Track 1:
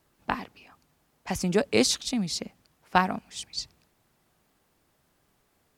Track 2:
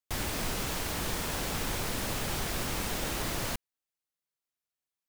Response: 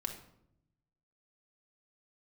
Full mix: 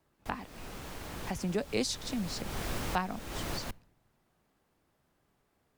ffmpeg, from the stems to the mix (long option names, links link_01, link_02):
-filter_complex "[0:a]volume=-3.5dB,asplit=2[link_01][link_02];[1:a]dynaudnorm=framelen=550:gausssize=5:maxgain=10dB,adelay=150,volume=-10.5dB,asplit=2[link_03][link_04];[link_04]volume=-22dB[link_05];[link_02]apad=whole_len=230722[link_06];[link_03][link_06]sidechaincompress=threshold=-35dB:ratio=12:attack=5.1:release=334[link_07];[2:a]atrim=start_sample=2205[link_08];[link_05][link_08]afir=irnorm=-1:irlink=0[link_09];[link_01][link_07][link_09]amix=inputs=3:normalize=0,highshelf=frequency=2800:gain=-7,acrossover=split=130|3000[link_10][link_11][link_12];[link_11]acompressor=threshold=-38dB:ratio=1.5[link_13];[link_10][link_13][link_12]amix=inputs=3:normalize=0"